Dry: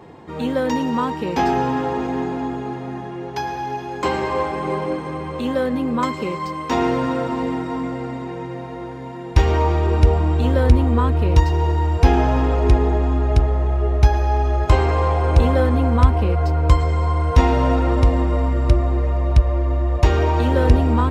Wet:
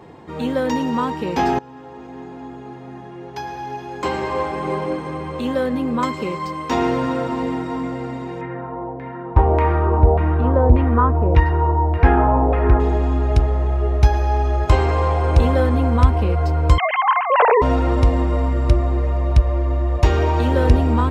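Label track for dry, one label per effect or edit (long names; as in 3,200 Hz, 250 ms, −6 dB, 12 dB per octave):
1.590000	4.710000	fade in, from −22.5 dB
8.410000	12.800000	auto-filter low-pass saw down 1.7 Hz 660–2,200 Hz
16.780000	17.620000	three sine waves on the formant tracks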